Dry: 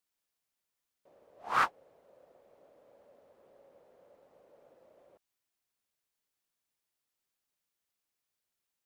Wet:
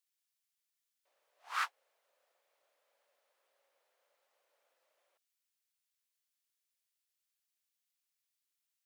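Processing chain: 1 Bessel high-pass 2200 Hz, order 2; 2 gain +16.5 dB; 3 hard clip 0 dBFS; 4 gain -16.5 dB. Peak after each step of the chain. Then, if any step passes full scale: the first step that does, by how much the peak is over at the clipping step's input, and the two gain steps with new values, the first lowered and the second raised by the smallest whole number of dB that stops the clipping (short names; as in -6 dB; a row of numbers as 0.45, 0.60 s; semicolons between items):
-21.5, -5.0, -5.0, -21.5 dBFS; no overload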